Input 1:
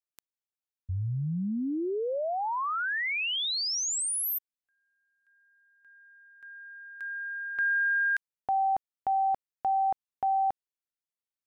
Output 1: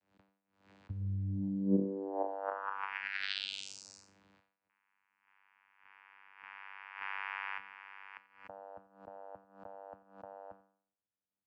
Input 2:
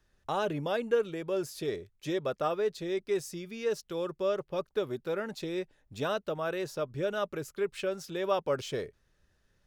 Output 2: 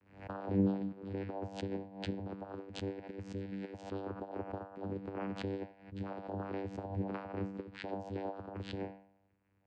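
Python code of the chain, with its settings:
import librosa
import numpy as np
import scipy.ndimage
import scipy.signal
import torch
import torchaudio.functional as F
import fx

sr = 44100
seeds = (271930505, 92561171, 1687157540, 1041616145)

y = fx.block_float(x, sr, bits=5)
y = scipy.signal.sosfilt(scipy.signal.butter(2, 2700.0, 'lowpass', fs=sr, output='sos'), y)
y = fx.over_compress(y, sr, threshold_db=-34.0, ratio=-0.5)
y = fx.comb_fb(y, sr, f0_hz=290.0, decay_s=0.59, harmonics='all', damping=0.1, mix_pct=90)
y = fx.vocoder(y, sr, bands=8, carrier='saw', carrier_hz=97.7)
y = y + 10.0 ** (-21.0 / 20.0) * np.pad(y, (int(88 * sr / 1000.0), 0))[:len(y)]
y = fx.pre_swell(y, sr, db_per_s=110.0)
y = F.gain(torch.from_numpy(y), 13.0).numpy()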